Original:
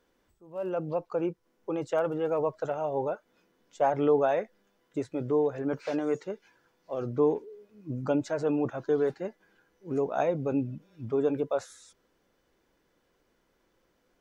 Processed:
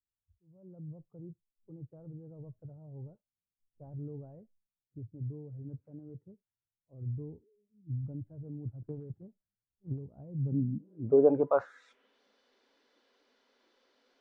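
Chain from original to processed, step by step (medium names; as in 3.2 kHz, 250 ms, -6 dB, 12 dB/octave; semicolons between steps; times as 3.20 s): low-pass sweep 100 Hz -> 4.3 kHz, 10.29–12.22 s; 8.82–10.07 s: transient shaper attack +8 dB, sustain +3 dB; on a send at -5.5 dB: differentiator + reverberation RT60 0.30 s, pre-delay 3 ms; on the sum: spectral noise reduction 24 dB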